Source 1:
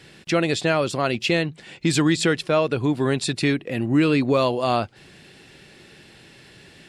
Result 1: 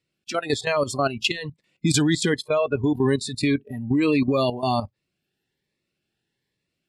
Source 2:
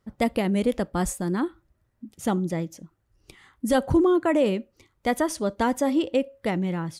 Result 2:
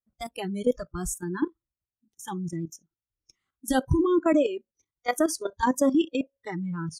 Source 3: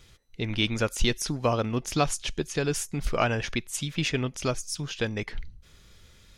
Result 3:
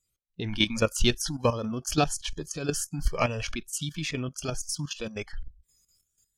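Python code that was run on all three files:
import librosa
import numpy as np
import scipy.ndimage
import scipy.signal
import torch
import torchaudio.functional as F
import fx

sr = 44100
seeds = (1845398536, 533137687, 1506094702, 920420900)

y = fx.noise_reduce_blind(x, sr, reduce_db=27)
y = fx.level_steps(y, sr, step_db=12)
y = fx.notch_cascade(y, sr, direction='rising', hz=1.2)
y = F.gain(torch.from_numpy(y), 5.5).numpy()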